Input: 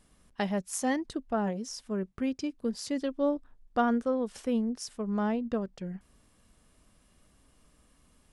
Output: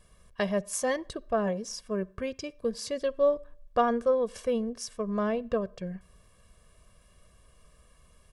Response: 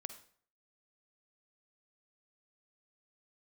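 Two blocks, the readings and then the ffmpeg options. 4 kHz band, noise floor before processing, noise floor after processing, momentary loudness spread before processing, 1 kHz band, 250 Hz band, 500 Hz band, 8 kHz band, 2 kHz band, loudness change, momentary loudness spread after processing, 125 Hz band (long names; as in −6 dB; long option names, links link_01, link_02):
+2.0 dB, −65 dBFS, −61 dBFS, 8 LU, +2.0 dB, −3.5 dB, +5.5 dB, +2.0 dB, +1.5 dB, +1.5 dB, 10 LU, 0.0 dB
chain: -filter_complex "[0:a]aecho=1:1:1.8:0.73,asplit=2[link_01][link_02];[1:a]atrim=start_sample=2205,lowpass=4000[link_03];[link_02][link_03]afir=irnorm=-1:irlink=0,volume=-10dB[link_04];[link_01][link_04]amix=inputs=2:normalize=0"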